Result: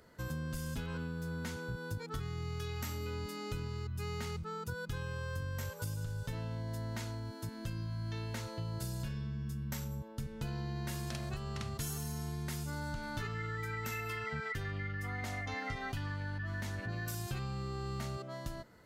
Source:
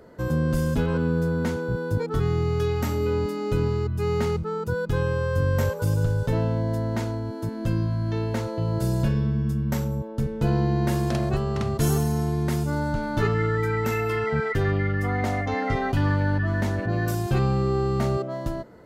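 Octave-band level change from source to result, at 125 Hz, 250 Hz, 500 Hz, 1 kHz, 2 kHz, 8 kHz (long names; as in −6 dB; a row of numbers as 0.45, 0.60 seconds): −14.5, −17.0, −19.0, −14.0, −10.0, −6.5 decibels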